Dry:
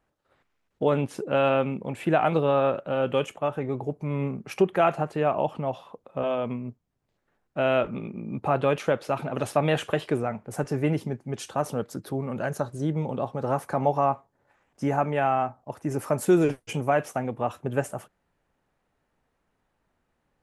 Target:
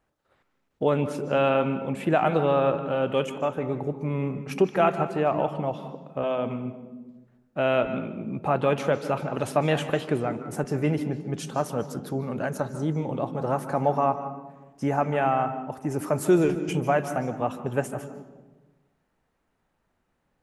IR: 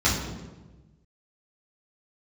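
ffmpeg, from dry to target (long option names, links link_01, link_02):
-filter_complex "[0:a]asplit=2[link_01][link_02];[link_02]highpass=frequency=170:width=0.5412,highpass=frequency=170:width=1.3066[link_03];[1:a]atrim=start_sample=2205,adelay=141[link_04];[link_03][link_04]afir=irnorm=-1:irlink=0,volume=-26.5dB[link_05];[link_01][link_05]amix=inputs=2:normalize=0"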